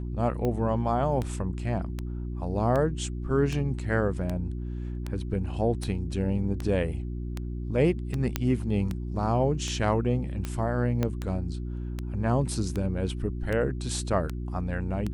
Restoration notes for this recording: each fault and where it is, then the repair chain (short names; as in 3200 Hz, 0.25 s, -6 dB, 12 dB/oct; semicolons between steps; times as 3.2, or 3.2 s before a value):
hum 60 Hz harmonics 6 -33 dBFS
tick 78 rpm -18 dBFS
8.36 pop -10 dBFS
11.03 pop -14 dBFS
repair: de-click; de-hum 60 Hz, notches 6